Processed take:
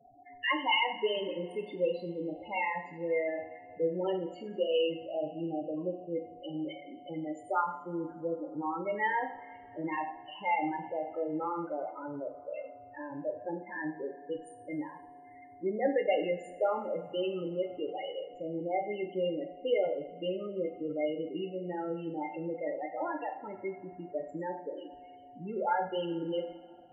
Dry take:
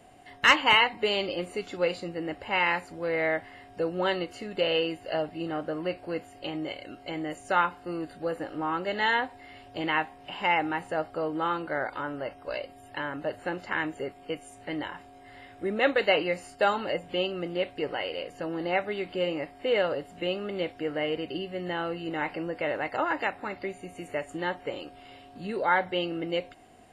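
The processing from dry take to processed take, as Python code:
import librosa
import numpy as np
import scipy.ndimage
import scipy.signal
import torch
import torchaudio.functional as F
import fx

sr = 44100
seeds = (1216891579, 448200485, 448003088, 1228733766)

y = fx.dynamic_eq(x, sr, hz=1500.0, q=2.0, threshold_db=-41.0, ratio=4.0, max_db=-5)
y = fx.spec_topn(y, sr, count=8)
y = fx.rev_double_slope(y, sr, seeds[0], early_s=0.53, late_s=2.7, knee_db=-18, drr_db=3.5)
y = y * librosa.db_to_amplitude(-4.0)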